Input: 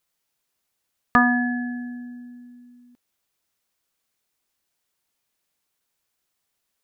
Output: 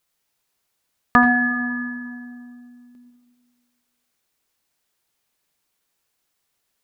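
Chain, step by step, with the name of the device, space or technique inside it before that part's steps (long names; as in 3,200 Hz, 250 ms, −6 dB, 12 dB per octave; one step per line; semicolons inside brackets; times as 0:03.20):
compressed reverb return (on a send at −5 dB: convolution reverb RT60 1.7 s, pre-delay 75 ms + downward compressor, threshold −20 dBFS, peak gain reduction 8 dB)
on the sum: level +2.5 dB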